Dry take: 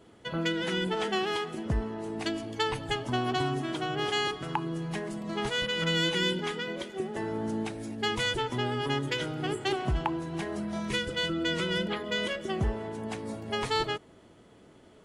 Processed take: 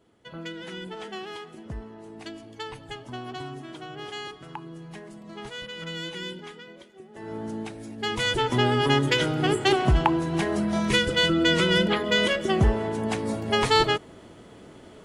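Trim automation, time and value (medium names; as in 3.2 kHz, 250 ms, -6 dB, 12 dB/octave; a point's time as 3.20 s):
6.32 s -7.5 dB
7.07 s -14 dB
7.32 s -1.5 dB
7.93 s -1.5 dB
8.56 s +8.5 dB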